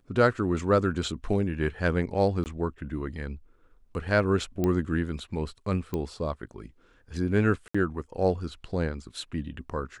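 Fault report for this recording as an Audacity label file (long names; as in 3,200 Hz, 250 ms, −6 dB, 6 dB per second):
2.440000	2.460000	drop-out 19 ms
4.640000	4.640000	click −15 dBFS
5.940000	5.940000	click −18 dBFS
7.680000	7.750000	drop-out 65 ms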